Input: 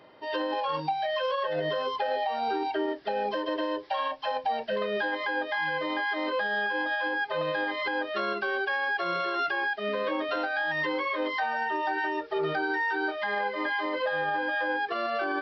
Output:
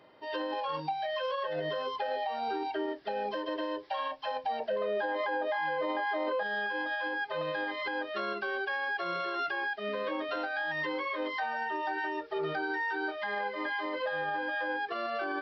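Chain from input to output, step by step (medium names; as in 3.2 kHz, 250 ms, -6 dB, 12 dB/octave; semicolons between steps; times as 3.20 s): 4.60–6.43 s: peaking EQ 630 Hz +11.5 dB 1.8 oct; peak limiter -20 dBFS, peak gain reduction 8.5 dB; trim -4.5 dB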